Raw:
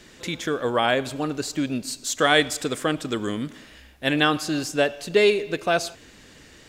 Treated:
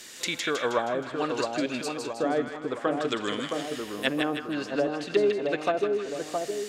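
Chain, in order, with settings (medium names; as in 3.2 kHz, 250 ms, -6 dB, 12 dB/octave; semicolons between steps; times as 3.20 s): RIAA curve recording; low-pass that closes with the level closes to 530 Hz, closed at -18 dBFS; two-band feedback delay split 1.2 kHz, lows 667 ms, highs 158 ms, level -4 dB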